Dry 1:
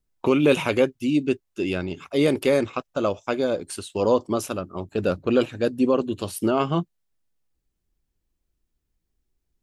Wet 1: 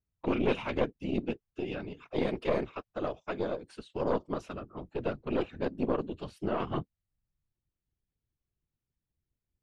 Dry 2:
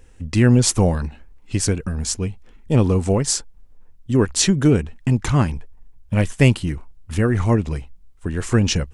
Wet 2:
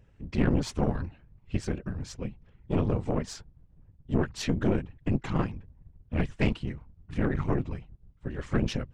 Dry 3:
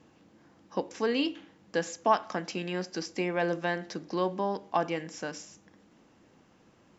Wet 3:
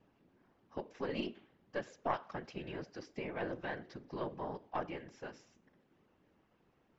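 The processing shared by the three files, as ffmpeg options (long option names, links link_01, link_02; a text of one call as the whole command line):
ffmpeg -i in.wav -af "lowpass=3500,afftfilt=real='hypot(re,im)*cos(2*PI*random(0))':imag='hypot(re,im)*sin(2*PI*random(1))':win_size=512:overlap=0.75,aeval=exprs='(tanh(7.08*val(0)+0.75)-tanh(0.75))/7.08':channel_layout=same" out.wav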